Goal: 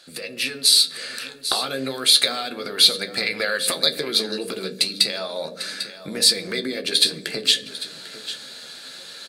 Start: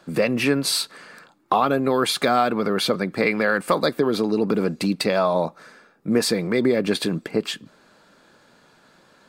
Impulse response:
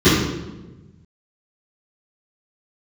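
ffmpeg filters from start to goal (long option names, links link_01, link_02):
-filter_complex "[0:a]acompressor=threshold=-31dB:ratio=5,equalizer=frequency=100:width_type=o:width=0.67:gain=-3,equalizer=frequency=250:width_type=o:width=0.67:gain=-3,equalizer=frequency=1000:width_type=o:width=0.67:gain=-10,equalizer=frequency=4000:width_type=o:width=0.67:gain=12,equalizer=frequency=10000:width_type=o:width=0.67:gain=10,flanger=delay=9.6:depth=6.4:regen=52:speed=0.32:shape=triangular,tiltshelf=frequency=650:gain=-7,aecho=1:1:797:0.158,asplit=2[link_01][link_02];[1:a]atrim=start_sample=2205,asetrate=66150,aresample=44100[link_03];[link_02][link_03]afir=irnorm=-1:irlink=0,volume=-36dB[link_04];[link_01][link_04]amix=inputs=2:normalize=0,dynaudnorm=framelen=110:gausssize=7:maxgain=12dB"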